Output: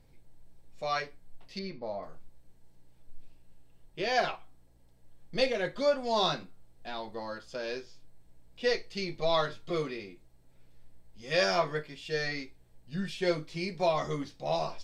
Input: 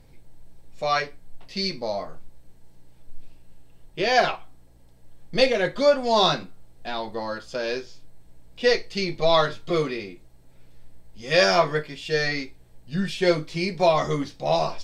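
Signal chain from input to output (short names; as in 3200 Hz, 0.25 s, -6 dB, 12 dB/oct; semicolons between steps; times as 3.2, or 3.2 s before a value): 1.59–2.03 Bessel low-pass 1900 Hz, order 2; gain -8.5 dB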